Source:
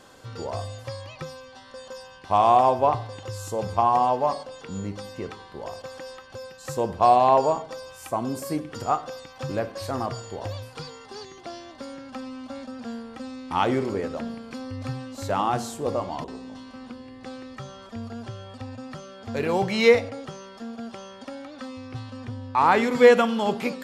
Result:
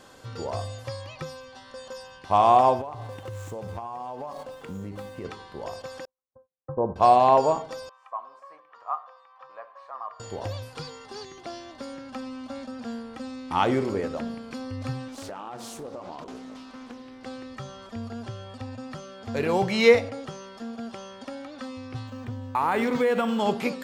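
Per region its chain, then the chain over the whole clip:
2.81–5.25 median filter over 9 samples + compressor 20:1, threshold -31 dBFS
6.05–6.96 gate -35 dBFS, range -52 dB + steep low-pass 1200 Hz
7.89–10.2 ladder band-pass 1100 Hz, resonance 65% + comb 1.7 ms, depth 43%
15.08–17.26 bell 79 Hz -11.5 dB 1.6 oct + compressor 10:1, threshold -34 dBFS + Doppler distortion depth 0.47 ms
22.07–23.4 compressor, threshold -19 dBFS + decimation joined by straight lines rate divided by 4×
whole clip: dry

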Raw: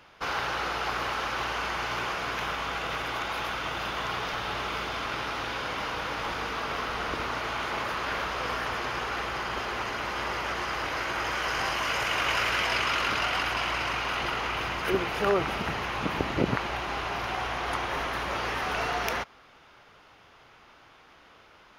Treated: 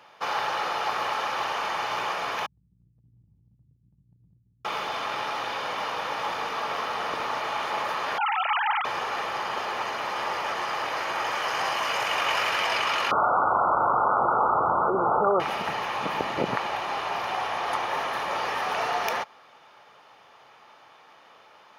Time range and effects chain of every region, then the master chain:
2.46–4.65 inverse Chebyshev low-pass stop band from 570 Hz, stop band 70 dB + feedback echo 94 ms, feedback 53%, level -22 dB + negative-ratio compressor -49 dBFS, ratio -0.5
8.18–8.85 sine-wave speech + high shelf 2000 Hz +11.5 dB
13.11–15.4 brick-wall FIR low-pass 1500 Hz + fast leveller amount 70%
whole clip: HPF 200 Hz 12 dB/oct; bell 870 Hz +12.5 dB 0.23 oct; comb 1.7 ms, depth 36%

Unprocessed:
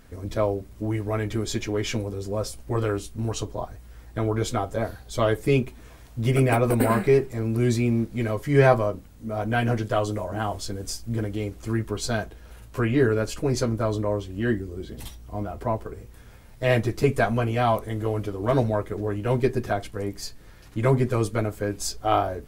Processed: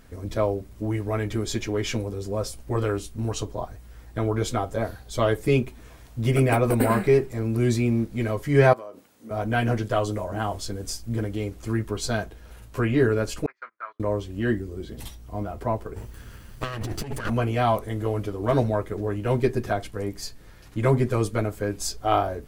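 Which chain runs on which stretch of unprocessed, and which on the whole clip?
8.73–9.31 HPF 340 Hz + compressor 5:1, threshold -36 dBFS
13.46–14 Butterworth band-pass 1600 Hz, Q 1.6 + gate -46 dBFS, range -26 dB
15.96–17.3 minimum comb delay 0.65 ms + negative-ratio compressor -30 dBFS
whole clip: dry

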